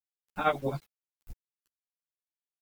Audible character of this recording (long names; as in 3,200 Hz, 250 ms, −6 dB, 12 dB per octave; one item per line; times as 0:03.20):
tremolo triangle 11 Hz, depth 100%
a quantiser's noise floor 10 bits, dither none
a shimmering, thickened sound